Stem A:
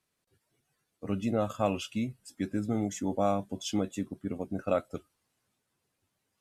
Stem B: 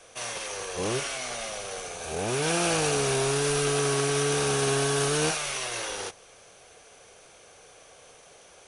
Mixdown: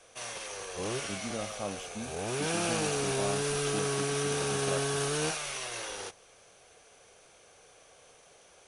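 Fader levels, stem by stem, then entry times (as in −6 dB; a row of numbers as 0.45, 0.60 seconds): −9.0, −5.5 decibels; 0.00, 0.00 seconds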